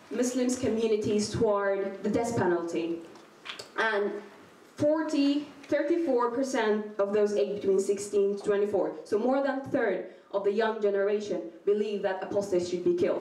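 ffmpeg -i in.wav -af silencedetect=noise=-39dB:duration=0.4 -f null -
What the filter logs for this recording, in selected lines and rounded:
silence_start: 4.26
silence_end: 4.78 | silence_duration: 0.52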